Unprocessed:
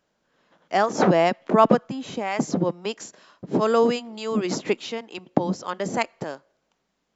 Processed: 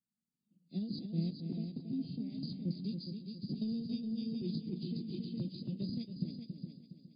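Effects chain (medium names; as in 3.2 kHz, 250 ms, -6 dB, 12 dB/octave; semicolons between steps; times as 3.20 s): knee-point frequency compression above 2.1 kHz 1.5:1; high-pass 77 Hz 12 dB/octave; spectral noise reduction 13 dB; Chebyshev band-stop 220–6500 Hz, order 3; treble shelf 2.3 kHz +7.5 dB; compressor with a negative ratio -33 dBFS, ratio -0.5; flange 0.28 Hz, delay 4.1 ms, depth 3.6 ms, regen +68%; multi-head delay 138 ms, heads second and third, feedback 41%, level -7 dB; 3.49–5.90 s: three bands compressed up and down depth 100%; trim -1.5 dB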